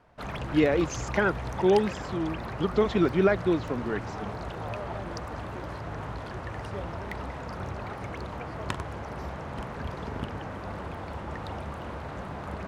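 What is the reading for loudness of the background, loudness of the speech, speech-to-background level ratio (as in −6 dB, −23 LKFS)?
−36.5 LKFS, −27.0 LKFS, 9.5 dB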